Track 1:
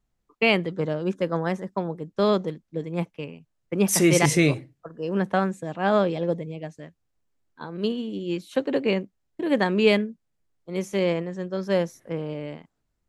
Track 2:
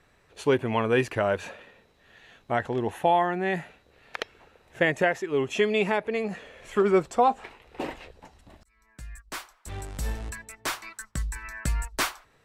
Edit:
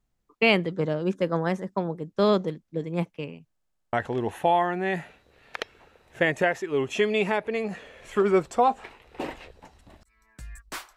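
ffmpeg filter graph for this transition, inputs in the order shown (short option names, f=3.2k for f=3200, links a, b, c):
-filter_complex "[0:a]apad=whole_dur=10.96,atrim=end=10.96,asplit=7[a][b][c][d][e][f][g];[a]atrim=end=3.572[h];[b]atrim=start=3.508:end=3.572[i];[c]atrim=start=3.508:end=3.572[j];[d]atrim=start=3.508:end=3.572[k];[e]atrim=start=3.508:end=3.572[l];[f]atrim=start=3.508:end=3.572[m];[g]atrim=start=3.508:end=3.572[n];[1:a]atrim=start=2.528:end=9.56[o];[h][i]acrossfade=d=0.004:c1=hsin:c2=hsin[p];[p][j]acrossfade=d=0.004:c1=hsin:c2=hsin[q];[q][k]acrossfade=d=0.004:c1=hsin:c2=hsin[r];[r][l]acrossfade=d=0.004:c1=hsin:c2=hsin[s];[s][m]acrossfade=d=0.004:c1=hsin:c2=hsin[t];[t][n]acrossfade=d=0.004:c1=hsin:c2=hsin[u];[u][o]acrossfade=d=0.004:c1=hsin:c2=hsin"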